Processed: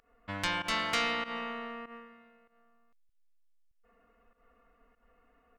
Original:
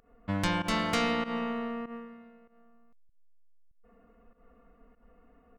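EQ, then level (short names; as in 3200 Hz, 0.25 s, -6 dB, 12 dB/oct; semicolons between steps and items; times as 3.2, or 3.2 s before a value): tilt shelf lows -8.5 dB, about 1200 Hz; bell 180 Hz -4.5 dB 0.93 oct; high shelf 3900 Hz -11.5 dB; 0.0 dB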